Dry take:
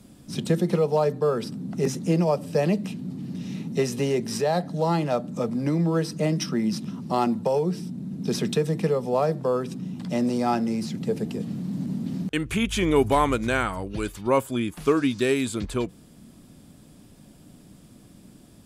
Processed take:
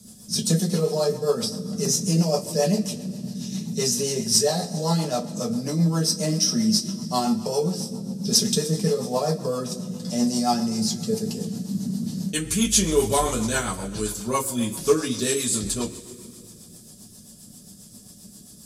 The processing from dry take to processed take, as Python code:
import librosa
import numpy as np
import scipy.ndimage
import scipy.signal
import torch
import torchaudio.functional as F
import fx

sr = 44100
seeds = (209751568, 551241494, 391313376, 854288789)

y = fx.high_shelf_res(x, sr, hz=3700.0, db=14.0, q=1.5)
y = fx.rev_double_slope(y, sr, seeds[0], early_s=0.21, late_s=2.5, knee_db=-21, drr_db=-3.5)
y = fx.rotary(y, sr, hz=7.5)
y = y * 10.0 ** (-3.5 / 20.0)